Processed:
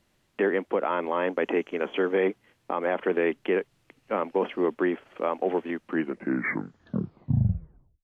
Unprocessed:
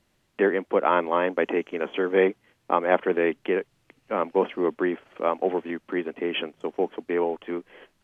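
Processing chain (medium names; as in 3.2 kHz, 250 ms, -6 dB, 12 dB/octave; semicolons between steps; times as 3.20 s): tape stop on the ending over 2.25 s; peak limiter -14.5 dBFS, peak gain reduction 10.5 dB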